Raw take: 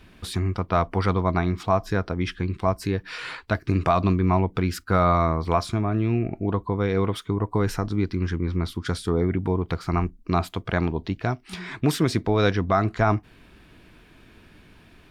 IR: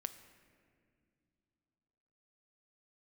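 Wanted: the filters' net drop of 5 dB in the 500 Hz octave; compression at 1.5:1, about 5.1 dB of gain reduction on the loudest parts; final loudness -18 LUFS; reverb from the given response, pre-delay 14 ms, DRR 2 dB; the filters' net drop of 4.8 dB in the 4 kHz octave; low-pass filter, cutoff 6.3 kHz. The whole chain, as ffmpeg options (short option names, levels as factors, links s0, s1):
-filter_complex "[0:a]lowpass=6300,equalizer=f=500:t=o:g=-7,equalizer=f=4000:t=o:g=-5,acompressor=threshold=0.0251:ratio=1.5,asplit=2[s0][s1];[1:a]atrim=start_sample=2205,adelay=14[s2];[s1][s2]afir=irnorm=-1:irlink=0,volume=1.06[s3];[s0][s3]amix=inputs=2:normalize=0,volume=3.76"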